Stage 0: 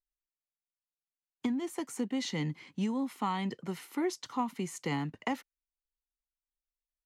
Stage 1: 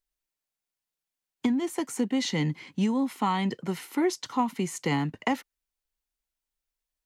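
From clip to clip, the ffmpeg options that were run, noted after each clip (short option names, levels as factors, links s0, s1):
-af "bandreject=f=1200:w=17,volume=2.11"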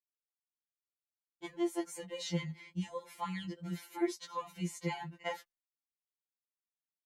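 -af "agate=range=0.0224:threshold=0.00562:ratio=3:detection=peak,afftfilt=real='re*2.83*eq(mod(b,8),0)':imag='im*2.83*eq(mod(b,8),0)':win_size=2048:overlap=0.75,volume=0.447"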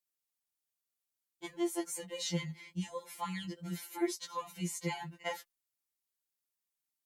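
-af "aemphasis=mode=production:type=cd"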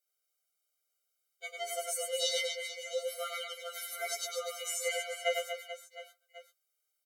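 -af "aecho=1:1:100|240|436|710.4|1095:0.631|0.398|0.251|0.158|0.1,afftfilt=real='re*eq(mod(floor(b*sr/1024/400),2),1)':imag='im*eq(mod(floor(b*sr/1024/400),2),1)':win_size=1024:overlap=0.75,volume=2.37"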